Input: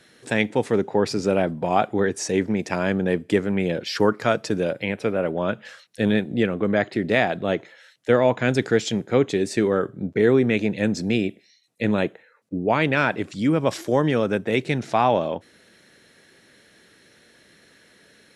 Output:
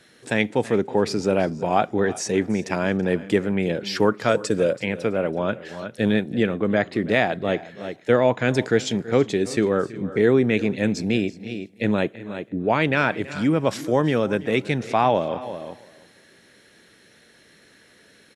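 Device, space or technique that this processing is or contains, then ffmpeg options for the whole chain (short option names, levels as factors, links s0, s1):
ducked delay: -filter_complex "[0:a]asplit=3[s0][s1][s2];[s1]adelay=364,volume=0.376[s3];[s2]apad=whole_len=825398[s4];[s3][s4]sidechaincompress=threshold=0.0224:ratio=10:attack=9.6:release=271[s5];[s0][s5]amix=inputs=2:normalize=0,asettb=1/sr,asplit=3[s6][s7][s8];[s6]atrim=end=4.294[s9];[s7]atrim=start=4.29:end=4.75,asetpts=PTS-STARTPTS,afade=t=in:d=0.004:c=qsin,afade=t=out:st=0.456:d=0.004:c=qsin,equalizer=f=500:t=o:w=0.33:g=8,equalizer=f=800:t=o:w=0.33:g=-9,equalizer=f=8000:t=o:w=0.33:g=11[s10];[s8]atrim=start=4.746[s11];[s9][s10]acrossfade=d=0.004:c1=hsin:c2=qsin[s12];[s12][s11]acrossfade=d=0.004:c1=qsin:c2=hsin,aecho=1:1:329|658:0.119|0.0214"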